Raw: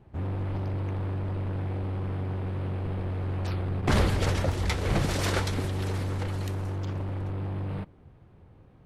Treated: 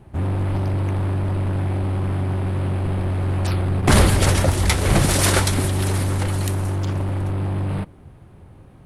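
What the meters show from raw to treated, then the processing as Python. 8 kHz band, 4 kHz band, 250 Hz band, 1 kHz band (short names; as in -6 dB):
+16.5 dB, +10.5 dB, +9.0 dB, +9.0 dB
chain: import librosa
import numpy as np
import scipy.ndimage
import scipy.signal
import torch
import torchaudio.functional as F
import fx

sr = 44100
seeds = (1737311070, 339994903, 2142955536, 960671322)

y = fx.peak_eq(x, sr, hz=10000.0, db=13.5, octaves=0.73)
y = fx.notch(y, sr, hz=470.0, q=12.0)
y = y * librosa.db_to_amplitude(9.0)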